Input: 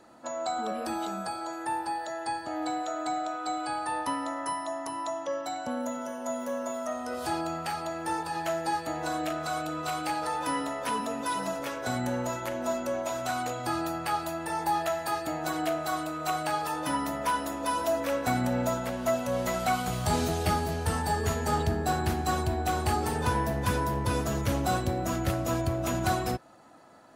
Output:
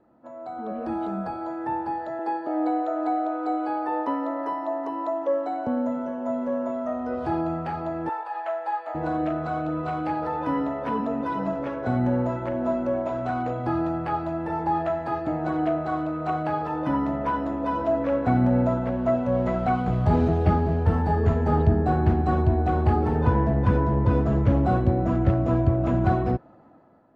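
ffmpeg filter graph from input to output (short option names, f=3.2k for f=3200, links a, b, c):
-filter_complex "[0:a]asettb=1/sr,asplit=3[a][b][c];[a]atrim=end=2.194[d];[b]atrim=start=2.19:end=5.67,asetpts=PTS-STARTPTS,afade=t=in:d=0.004:c=qsin,afade=t=out:st=3.476:d=0.004:c=qsin,highpass=f=380:t=q:w=1.7,aecho=1:1:770:0.133,atrim=end_sample=153468[e];[c]atrim=start=5.666[f];[d][e]acrossfade=d=0.004:c1=hsin:c2=qsin[g];[g][f]acrossfade=d=0.004:c1=qsin:c2=hsin,asettb=1/sr,asplit=3[h][i][j];[h]atrim=end=8.094[k];[i]atrim=start=8.09:end=8.95,asetpts=PTS-STARTPTS,afade=t=in:d=0.004:c=qsin,afade=t=out:st=0.856:d=0.004:c=qsin,highpass=f=620:w=0.5412,highpass=f=620:w=1.3066,equalizer=f=5.5k:w=1.9:g=-7.5[l];[j]atrim=start=8.946[m];[k][l]acrossfade=d=0.004:c1=hsin:c2=qsin[n];[n][m]acrossfade=d=0.004:c1=qsin:c2=hsin,lowpass=2.1k,dynaudnorm=f=220:g=7:m=11dB,tiltshelf=f=750:g=6.5,volume=-7.5dB"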